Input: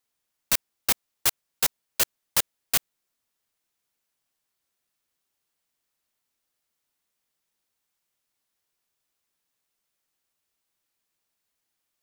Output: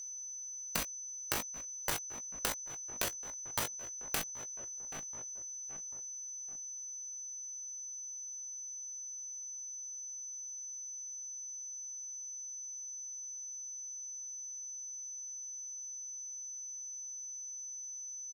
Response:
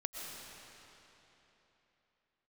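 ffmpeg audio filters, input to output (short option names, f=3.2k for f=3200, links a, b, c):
-filter_complex "[0:a]asplit=2[a][b];[b]asoftclip=type=tanh:threshold=-17.5dB,volume=-8.5dB[c];[a][c]amix=inputs=2:normalize=0,asplit=2[d][e];[e]adelay=19,volume=-14dB[f];[d][f]amix=inputs=2:normalize=0,asplit=2[g][h];[h]adelay=511,lowpass=f=1.6k:p=1,volume=-23dB,asplit=2[i][j];[j]adelay=511,lowpass=f=1.6k:p=1,volume=0.44,asplit=2[k][l];[l]adelay=511,lowpass=f=1.6k:p=1,volume=0.44[m];[i][k][m]amix=inputs=3:normalize=0[n];[g][n]amix=inputs=2:normalize=0,atempo=0.63,highshelf=f=2.2k:g=-10.5,acompressor=threshold=-41dB:ratio=16,aeval=exprs='val(0)+0.00316*sin(2*PI*5800*n/s)':c=same,asetrate=45938,aresample=44100,volume=8.5dB"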